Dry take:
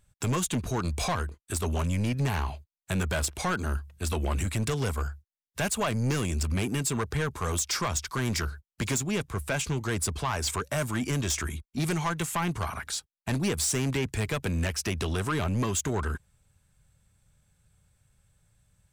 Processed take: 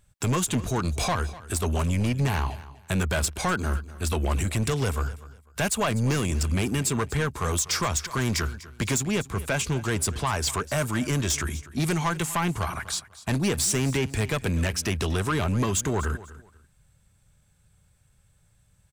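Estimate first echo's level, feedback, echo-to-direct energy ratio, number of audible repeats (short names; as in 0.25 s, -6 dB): -17.5 dB, 25%, -17.5 dB, 2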